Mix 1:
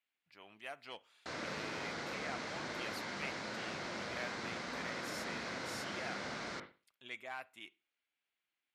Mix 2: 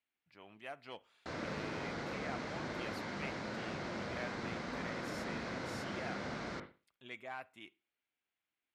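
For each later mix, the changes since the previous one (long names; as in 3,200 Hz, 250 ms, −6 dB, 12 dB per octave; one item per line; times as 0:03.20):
master: add spectral tilt −2 dB per octave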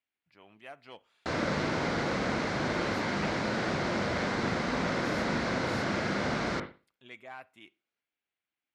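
background +11.0 dB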